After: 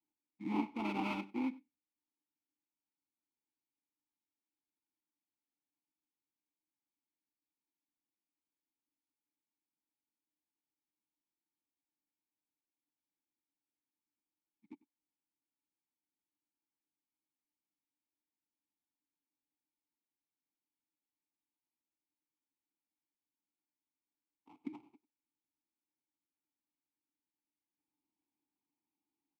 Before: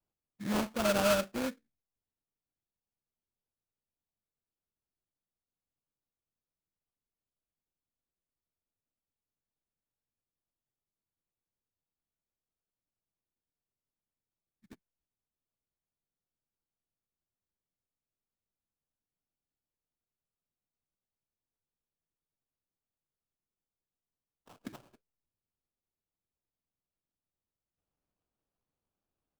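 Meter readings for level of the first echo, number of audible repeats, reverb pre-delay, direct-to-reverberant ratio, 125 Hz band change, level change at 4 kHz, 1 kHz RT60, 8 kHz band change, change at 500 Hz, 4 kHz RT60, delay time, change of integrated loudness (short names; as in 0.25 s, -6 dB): -21.5 dB, 1, none, none, -7.5 dB, -14.0 dB, none, under -25 dB, -17.0 dB, none, 96 ms, -8.5 dB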